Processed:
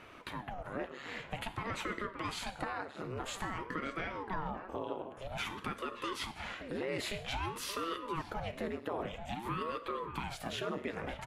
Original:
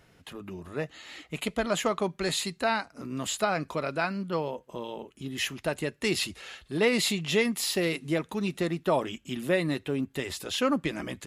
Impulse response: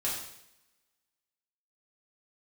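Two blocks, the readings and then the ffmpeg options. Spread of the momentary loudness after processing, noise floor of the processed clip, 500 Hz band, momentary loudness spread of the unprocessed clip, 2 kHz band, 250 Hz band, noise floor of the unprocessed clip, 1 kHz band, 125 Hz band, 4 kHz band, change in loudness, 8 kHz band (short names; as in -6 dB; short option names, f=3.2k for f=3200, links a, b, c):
4 LU, -51 dBFS, -11.0 dB, 12 LU, -8.5 dB, -12.0 dB, -62 dBFS, -4.5 dB, -8.5 dB, -10.5 dB, -10.0 dB, -13.5 dB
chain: -filter_complex "[0:a]acrossover=split=290 2200:gain=0.0891 1 0.2[a][b][c];[a][b][c]amix=inputs=3:normalize=0,bandreject=f=660:w=12,alimiter=level_in=3dB:limit=-24dB:level=0:latency=1:release=16,volume=-3dB,acompressor=threshold=-55dB:ratio=2.5,asplit=2[d][e];[e]adelay=575,lowpass=f=1.4k:p=1,volume=-8dB,asplit=2[f][g];[g]adelay=575,lowpass=f=1.4k:p=1,volume=0.46,asplit=2[h][i];[i]adelay=575,lowpass=f=1.4k:p=1,volume=0.46,asplit=2[j][k];[k]adelay=575,lowpass=f=1.4k:p=1,volume=0.46,asplit=2[l][m];[m]adelay=575,lowpass=f=1.4k:p=1,volume=0.46[n];[d][f][h][j][l][n]amix=inputs=6:normalize=0,asplit=2[o][p];[1:a]atrim=start_sample=2205,afade=t=out:st=0.31:d=0.01,atrim=end_sample=14112[q];[p][q]afir=irnorm=-1:irlink=0,volume=-13.5dB[r];[o][r]amix=inputs=2:normalize=0,aeval=exprs='val(0)*sin(2*PI*450*n/s+450*0.85/0.51*sin(2*PI*0.51*n/s))':c=same,volume=13dB"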